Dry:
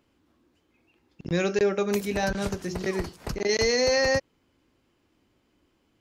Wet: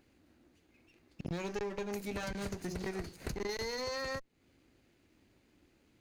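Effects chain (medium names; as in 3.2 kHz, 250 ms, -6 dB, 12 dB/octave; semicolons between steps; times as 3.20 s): comb filter that takes the minimum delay 0.45 ms; compression 6:1, threshold -37 dBFS, peak gain reduction 16 dB; trim +1 dB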